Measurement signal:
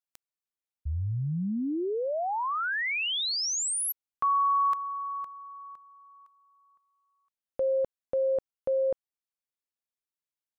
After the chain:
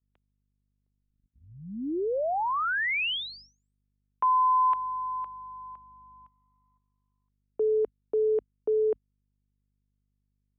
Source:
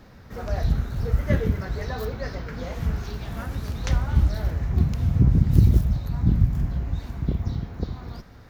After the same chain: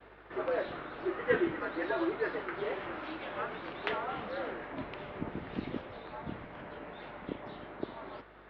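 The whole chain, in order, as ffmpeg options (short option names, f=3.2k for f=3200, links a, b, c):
-af "highpass=f=400:t=q:w=0.5412,highpass=f=400:t=q:w=1.307,lowpass=f=3.3k:t=q:w=0.5176,lowpass=f=3.3k:t=q:w=0.7071,lowpass=f=3.3k:t=q:w=1.932,afreqshift=-100,aeval=exprs='val(0)+0.000708*(sin(2*PI*50*n/s)+sin(2*PI*2*50*n/s)/2+sin(2*PI*3*50*n/s)/3+sin(2*PI*4*50*n/s)/4+sin(2*PI*5*50*n/s)/5)':c=same,agate=range=-33dB:threshold=-56dB:ratio=3:release=41:detection=peak,volume=2dB"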